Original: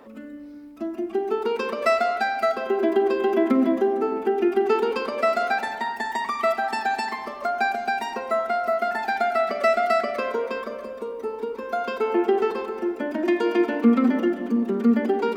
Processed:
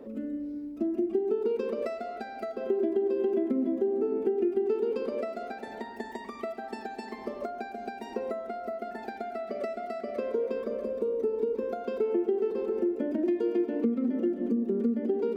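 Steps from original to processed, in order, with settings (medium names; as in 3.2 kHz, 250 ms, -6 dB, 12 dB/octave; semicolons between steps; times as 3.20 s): compression, threshold -30 dBFS, peak gain reduction 16.5 dB; resonant low shelf 670 Hz +11.5 dB, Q 1.5; trim -8.5 dB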